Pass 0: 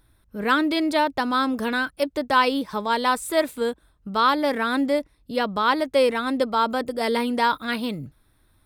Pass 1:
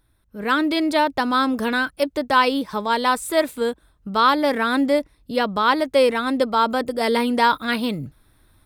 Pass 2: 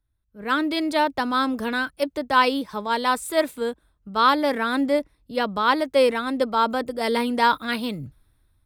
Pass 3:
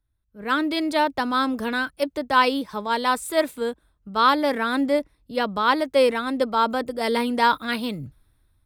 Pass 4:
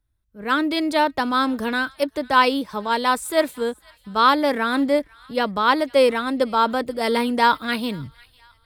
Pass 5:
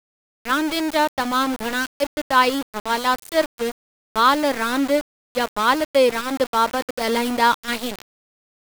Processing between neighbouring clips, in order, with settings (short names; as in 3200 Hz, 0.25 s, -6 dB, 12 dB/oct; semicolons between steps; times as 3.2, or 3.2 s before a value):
AGC gain up to 9.5 dB; gain -4 dB
three-band expander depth 40%; gain -2.5 dB
nothing audible
thin delay 0.498 s, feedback 45%, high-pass 1500 Hz, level -23 dB; gain +2 dB
sample gate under -24 dBFS